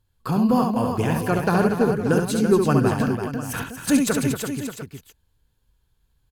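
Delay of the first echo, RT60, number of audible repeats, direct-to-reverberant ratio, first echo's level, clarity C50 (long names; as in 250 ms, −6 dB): 69 ms, no reverb audible, 5, no reverb audible, −5.0 dB, no reverb audible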